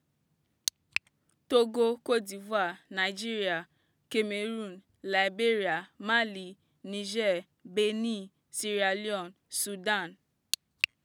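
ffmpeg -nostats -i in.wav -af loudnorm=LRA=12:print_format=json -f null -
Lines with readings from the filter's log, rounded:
"input_i" : "-31.1",
"input_tp" : "-6.2",
"input_lra" : "2.4",
"input_thresh" : "-41.6",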